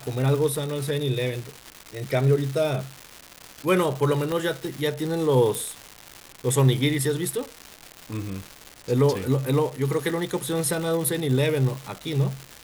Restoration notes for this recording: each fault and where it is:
crackle 390/s -29 dBFS
4.32 pop -14 dBFS
5.55 pop

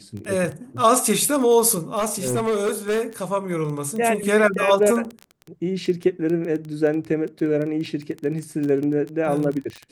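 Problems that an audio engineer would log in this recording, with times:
crackle 13/s -25 dBFS
1.98–3.02 clipped -18 dBFS

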